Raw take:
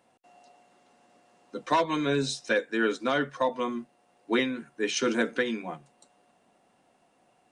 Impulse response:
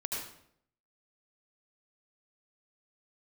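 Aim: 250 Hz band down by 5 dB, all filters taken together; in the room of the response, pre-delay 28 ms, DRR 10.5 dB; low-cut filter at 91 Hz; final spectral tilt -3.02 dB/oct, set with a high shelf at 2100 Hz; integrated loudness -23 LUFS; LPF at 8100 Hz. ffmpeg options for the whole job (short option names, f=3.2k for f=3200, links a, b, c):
-filter_complex "[0:a]highpass=91,lowpass=8.1k,equalizer=f=250:t=o:g=-6,highshelf=f=2.1k:g=-7,asplit=2[a][b];[1:a]atrim=start_sample=2205,adelay=28[c];[b][c]afir=irnorm=-1:irlink=0,volume=-13.5dB[d];[a][d]amix=inputs=2:normalize=0,volume=8dB"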